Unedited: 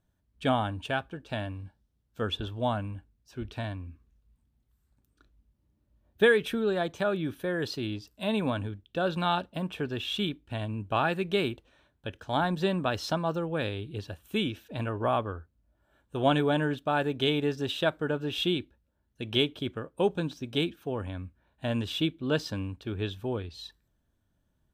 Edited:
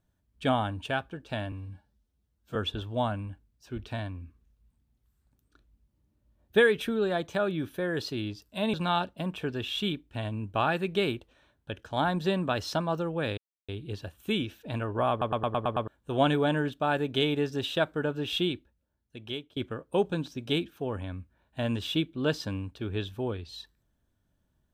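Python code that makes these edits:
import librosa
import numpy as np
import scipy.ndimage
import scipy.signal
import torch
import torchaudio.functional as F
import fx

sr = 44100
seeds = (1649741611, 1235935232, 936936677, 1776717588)

y = fx.edit(x, sr, fx.stretch_span(start_s=1.52, length_s=0.69, factor=1.5),
    fx.cut(start_s=8.39, length_s=0.71),
    fx.insert_silence(at_s=13.74, length_s=0.31),
    fx.stutter_over(start_s=15.16, slice_s=0.11, count=7),
    fx.fade_out_to(start_s=18.41, length_s=1.21, floor_db=-17.5), tone=tone)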